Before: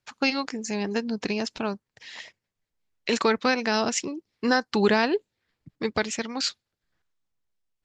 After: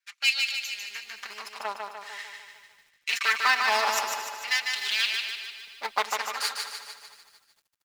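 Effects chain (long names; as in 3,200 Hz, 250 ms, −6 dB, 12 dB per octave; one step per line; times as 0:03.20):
lower of the sound and its delayed copy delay 5 ms
in parallel at −3.5 dB: comparator with hysteresis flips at −21 dBFS
on the sum: auto-filter high-pass sine 0.46 Hz 930–3,100 Hz
0:00.51–0:01.65: downward compressor, threshold −35 dBFS, peak gain reduction 10 dB
on a send: repeating echo 149 ms, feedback 53%, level −4.5 dB
on the sum: feedback echo at a low word length 227 ms, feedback 55%, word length 8 bits, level −14.5 dB
level −2 dB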